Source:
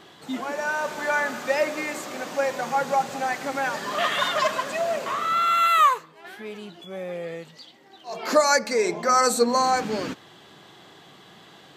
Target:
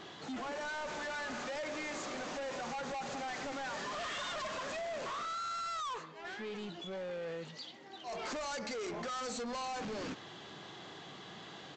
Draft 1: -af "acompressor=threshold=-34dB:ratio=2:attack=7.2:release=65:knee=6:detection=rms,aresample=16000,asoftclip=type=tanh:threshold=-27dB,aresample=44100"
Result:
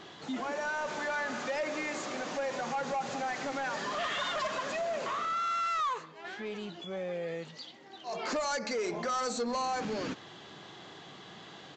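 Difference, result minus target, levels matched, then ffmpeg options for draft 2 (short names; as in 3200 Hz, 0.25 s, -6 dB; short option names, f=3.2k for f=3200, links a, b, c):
soft clip: distortion -9 dB
-af "acompressor=threshold=-34dB:ratio=2:attack=7.2:release=65:knee=6:detection=rms,aresample=16000,asoftclip=type=tanh:threshold=-37.5dB,aresample=44100"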